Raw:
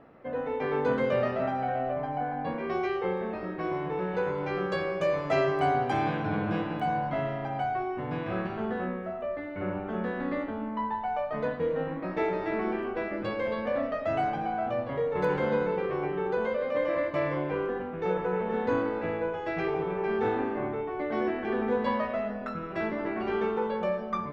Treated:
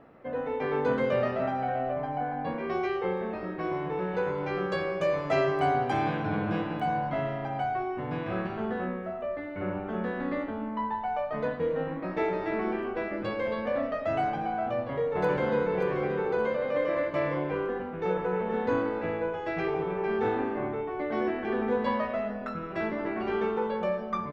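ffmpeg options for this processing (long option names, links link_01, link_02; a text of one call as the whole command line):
ffmpeg -i in.wav -filter_complex "[0:a]asplit=2[link_01][link_02];[link_02]afade=type=in:start_time=14.58:duration=0.01,afade=type=out:start_time=15.74:duration=0.01,aecho=0:1:580|1160|1740|2320|2900|3480:0.446684|0.223342|0.111671|0.0558354|0.0279177|0.0139589[link_03];[link_01][link_03]amix=inputs=2:normalize=0" out.wav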